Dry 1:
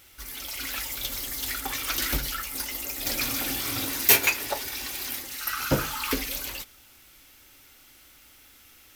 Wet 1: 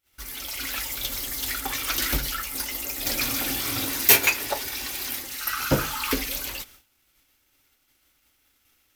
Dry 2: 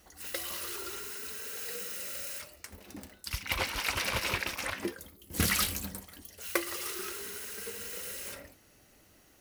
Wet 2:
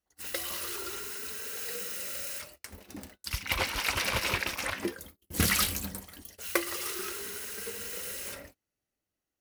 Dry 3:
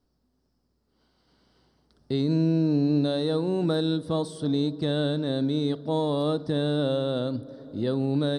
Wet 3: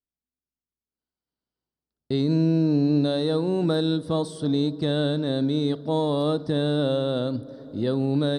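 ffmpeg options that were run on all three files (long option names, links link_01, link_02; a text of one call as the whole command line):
ffmpeg -i in.wav -af "agate=range=-29dB:threshold=-51dB:ratio=16:detection=peak,volume=2dB" out.wav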